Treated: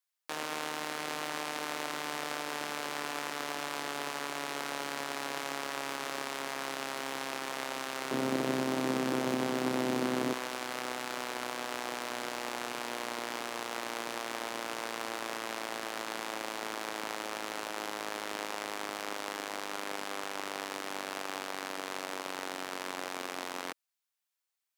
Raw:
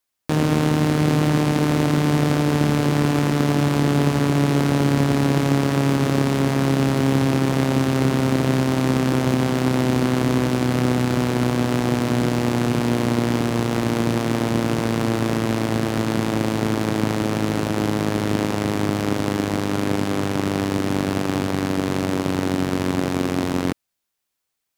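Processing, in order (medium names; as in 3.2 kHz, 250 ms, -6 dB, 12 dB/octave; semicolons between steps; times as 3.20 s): high-pass 810 Hz 12 dB/octave, from 8.11 s 300 Hz, from 10.33 s 740 Hz; trim -8 dB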